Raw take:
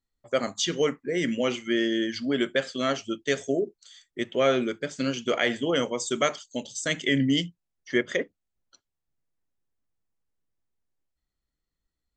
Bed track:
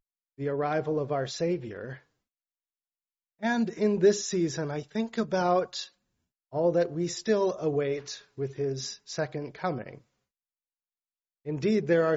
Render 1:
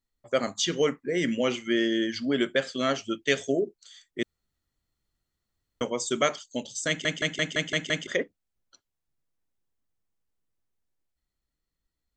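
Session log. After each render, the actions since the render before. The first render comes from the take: 3.05–3.51 s: peaking EQ 1.5 kHz -> 4.1 kHz +6.5 dB; 4.23–5.81 s: room tone; 6.88 s: stutter in place 0.17 s, 7 plays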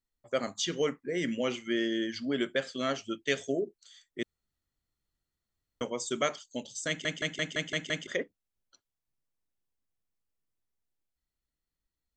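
trim -5 dB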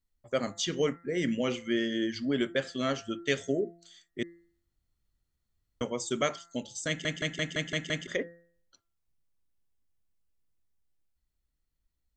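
bass shelf 150 Hz +10.5 dB; de-hum 170.6 Hz, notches 12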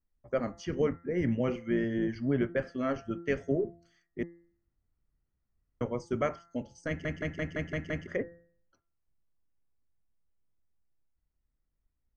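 octave divider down 1 oct, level -6 dB; boxcar filter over 12 samples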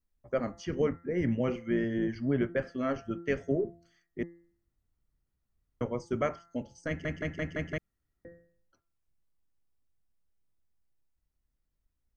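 7.78–8.25 s: room tone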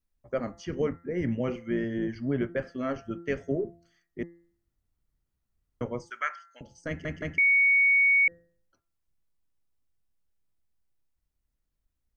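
6.10–6.61 s: resonant high-pass 1.6 kHz, resonance Q 3.7; 7.38–8.28 s: bleep 2.23 kHz -18 dBFS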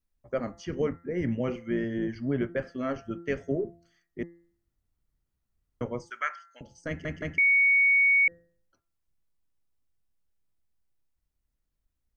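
no audible change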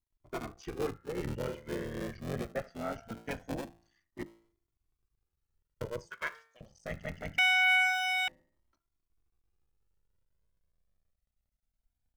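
cycle switcher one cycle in 3, muted; Shepard-style flanger rising 0.23 Hz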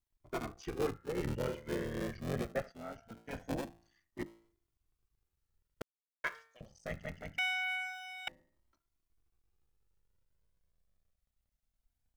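2.72–3.33 s: gain -8.5 dB; 5.82–6.24 s: mute; 6.74–8.27 s: fade out quadratic, to -16.5 dB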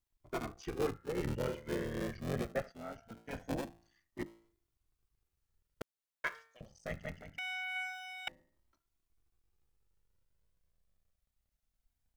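7.21–7.76 s: level held to a coarse grid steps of 10 dB

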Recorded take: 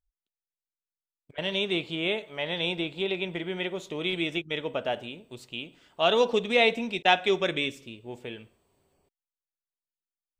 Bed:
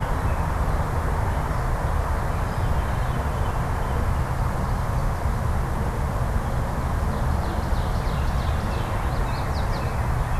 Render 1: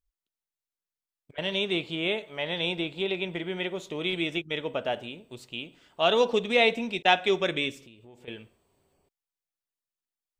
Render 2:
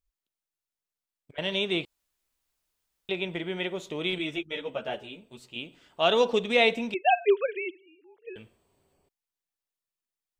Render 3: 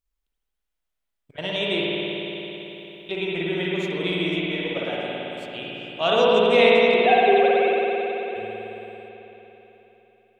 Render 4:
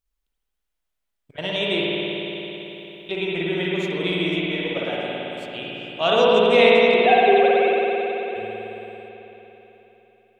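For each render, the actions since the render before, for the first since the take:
7.84–8.28 s: compression 4:1, threshold -49 dBFS
1.85–3.09 s: room tone; 4.18–5.56 s: three-phase chorus; 6.94–8.36 s: formants replaced by sine waves
spring tank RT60 3.9 s, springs 55 ms, chirp 70 ms, DRR -5.5 dB
trim +1.5 dB

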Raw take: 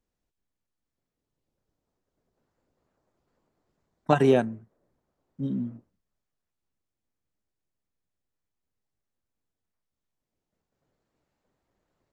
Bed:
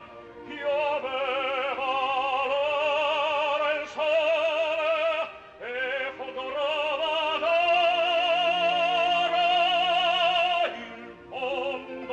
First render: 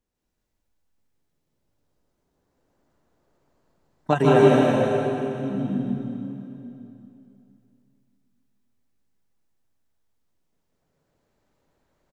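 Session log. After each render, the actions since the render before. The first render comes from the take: delay 153 ms -5 dB; plate-style reverb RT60 3 s, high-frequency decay 0.9×, pre-delay 120 ms, DRR -4.5 dB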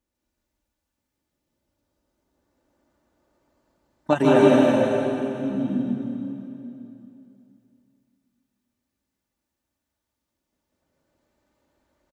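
high-pass 42 Hz; comb 3.4 ms, depth 48%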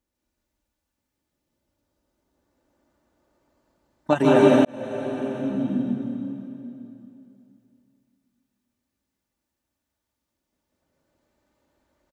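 4.65–5.35 s: fade in linear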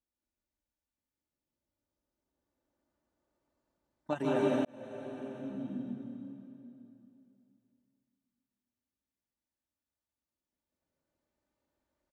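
trim -14 dB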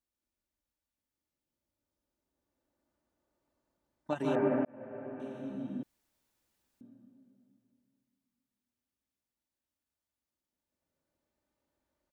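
4.35–5.20 s: steep low-pass 2.2 kHz; 5.83–6.81 s: room tone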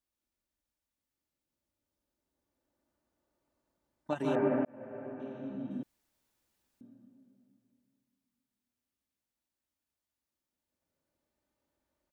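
5.13–5.71 s: distance through air 150 m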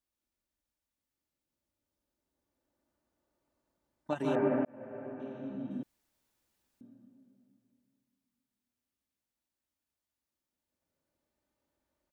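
no audible change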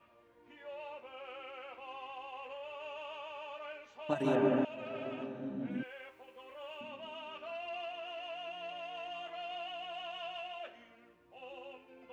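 add bed -20 dB

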